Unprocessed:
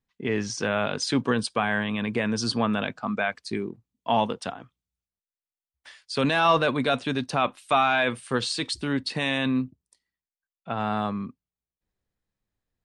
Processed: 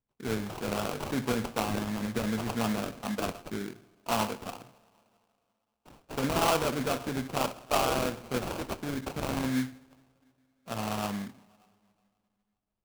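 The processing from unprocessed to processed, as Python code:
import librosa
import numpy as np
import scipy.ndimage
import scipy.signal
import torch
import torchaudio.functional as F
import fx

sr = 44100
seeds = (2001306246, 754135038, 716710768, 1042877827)

y = fx.rev_double_slope(x, sr, seeds[0], early_s=0.47, late_s=2.5, knee_db=-21, drr_db=6.5)
y = fx.sample_hold(y, sr, seeds[1], rate_hz=1900.0, jitter_pct=20)
y = F.gain(torch.from_numpy(y), -6.5).numpy()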